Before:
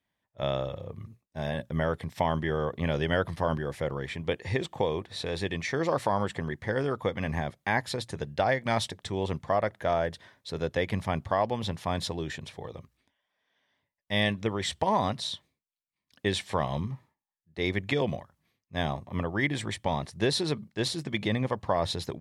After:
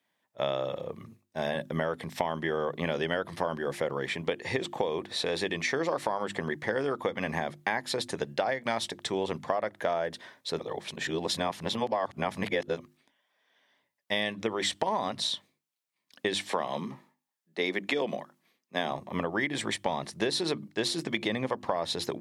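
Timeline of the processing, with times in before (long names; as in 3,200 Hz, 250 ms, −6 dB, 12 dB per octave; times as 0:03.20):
0:10.59–0:12.78: reverse
0:16.45–0:18.91: high-pass filter 170 Hz 24 dB per octave
whole clip: high-pass filter 220 Hz 12 dB per octave; mains-hum notches 50/100/150/200/250/300/350 Hz; downward compressor, threshold −31 dBFS; level +5.5 dB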